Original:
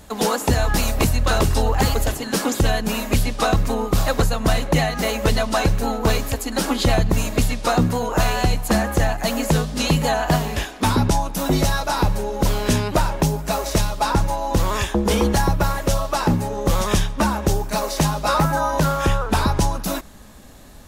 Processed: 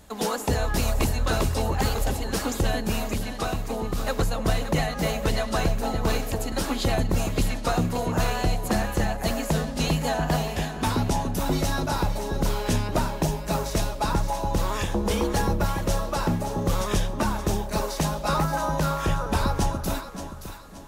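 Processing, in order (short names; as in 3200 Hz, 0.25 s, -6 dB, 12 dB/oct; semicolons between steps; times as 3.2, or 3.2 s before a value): 3.05–4.07 compressor 2:1, threshold -22 dBFS, peak gain reduction 5 dB; echo with dull and thin repeats by turns 0.287 s, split 820 Hz, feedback 61%, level -5 dB; gain -6.5 dB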